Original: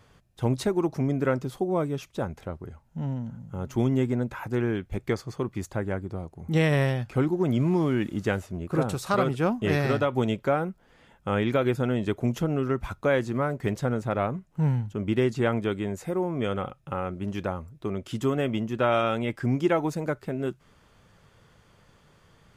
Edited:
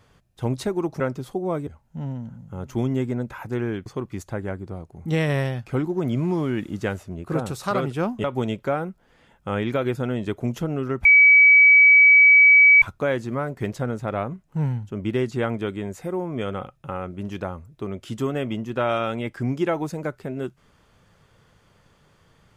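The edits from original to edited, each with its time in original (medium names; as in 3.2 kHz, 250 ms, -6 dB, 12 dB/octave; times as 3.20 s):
1.00–1.26 s: delete
1.93–2.68 s: delete
4.87–5.29 s: delete
9.67–10.04 s: delete
12.85 s: add tone 2.28 kHz -9 dBFS 1.77 s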